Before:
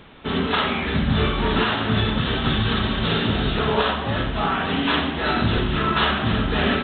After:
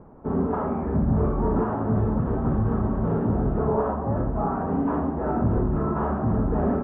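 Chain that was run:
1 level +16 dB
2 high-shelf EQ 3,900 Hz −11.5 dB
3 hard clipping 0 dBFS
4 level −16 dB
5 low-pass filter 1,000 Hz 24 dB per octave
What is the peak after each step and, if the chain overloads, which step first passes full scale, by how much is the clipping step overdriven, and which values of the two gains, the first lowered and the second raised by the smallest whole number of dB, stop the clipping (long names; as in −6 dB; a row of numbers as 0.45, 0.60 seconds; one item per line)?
+8.5, +7.5, 0.0, −16.0, −14.5 dBFS
step 1, 7.5 dB
step 1 +8 dB, step 4 −8 dB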